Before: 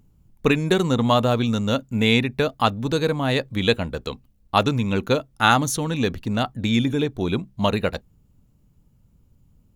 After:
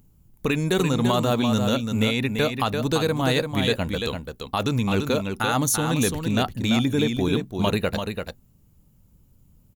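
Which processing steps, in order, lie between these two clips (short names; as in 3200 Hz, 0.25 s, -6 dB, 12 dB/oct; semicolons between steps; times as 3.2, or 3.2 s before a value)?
high shelf 8300 Hz +12 dB; limiter -12 dBFS, peak gain reduction 10.5 dB; echo 0.34 s -6 dB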